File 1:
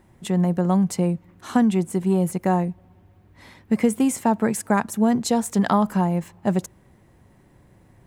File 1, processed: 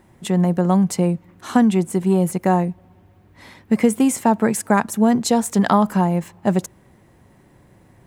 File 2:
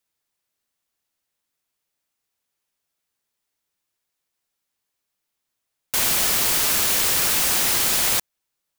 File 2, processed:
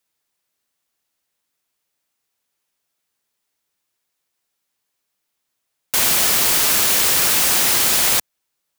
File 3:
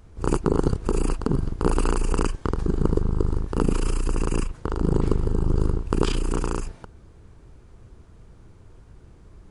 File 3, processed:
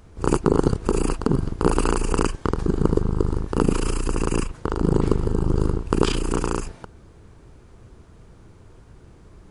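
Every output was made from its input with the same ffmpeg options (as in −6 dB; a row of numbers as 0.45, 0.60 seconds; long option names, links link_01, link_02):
-af "lowshelf=frequency=90:gain=-6,volume=4dB"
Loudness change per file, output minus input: +3.5, +4.0, +2.5 LU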